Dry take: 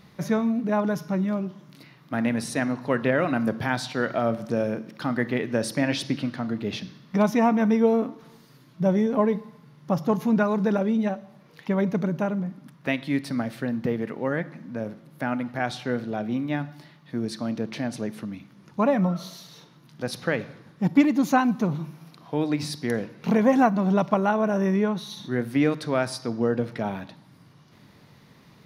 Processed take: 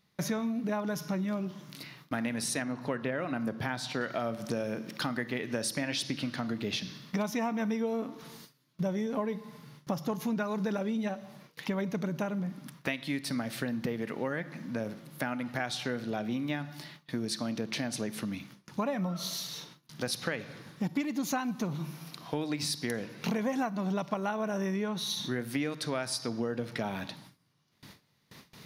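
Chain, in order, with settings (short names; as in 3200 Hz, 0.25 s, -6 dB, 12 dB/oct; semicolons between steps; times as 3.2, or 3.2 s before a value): gate with hold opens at -42 dBFS; high shelf 2200 Hz +9.5 dB, from 2.62 s +2.5 dB, from 4.01 s +10.5 dB; compressor 5:1, threshold -30 dBFS, peak gain reduction 16 dB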